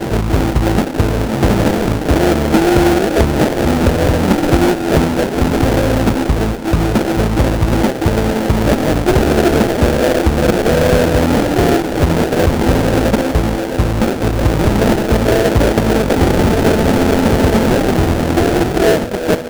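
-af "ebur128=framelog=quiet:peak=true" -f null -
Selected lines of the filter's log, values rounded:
Integrated loudness:
  I:         -13.8 LUFS
  Threshold: -23.7 LUFS
Loudness range:
  LRA:         1.8 LU
  Threshold: -33.7 LUFS
  LRA low:   -14.7 LUFS
  LRA high:  -12.9 LUFS
True peak:
  Peak:       -1.3 dBFS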